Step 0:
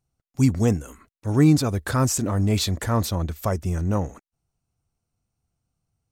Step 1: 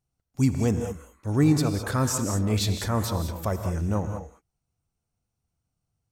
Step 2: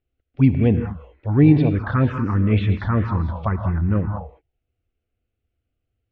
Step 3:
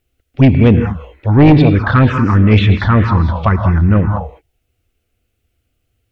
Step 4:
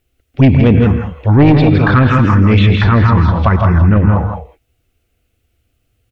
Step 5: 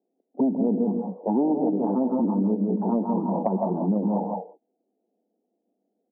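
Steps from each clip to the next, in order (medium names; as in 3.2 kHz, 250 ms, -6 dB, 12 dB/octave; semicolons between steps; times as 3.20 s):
gated-style reverb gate 230 ms rising, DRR 6 dB; trim -3.5 dB
touch-sensitive phaser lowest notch 160 Hz, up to 1.3 kHz, full sweep at -18.5 dBFS; steep low-pass 3.2 kHz 36 dB/octave; trim +7.5 dB
treble shelf 2.3 kHz +9 dB; sine folder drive 6 dB, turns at -2 dBFS
on a send: delay 163 ms -6 dB; on the sum: loudness maximiser +3.5 dB; trim -1 dB
Chebyshev band-pass 190–910 Hz, order 5; compression 6:1, threshold -18 dBFS, peak gain reduction 11 dB; trim -2 dB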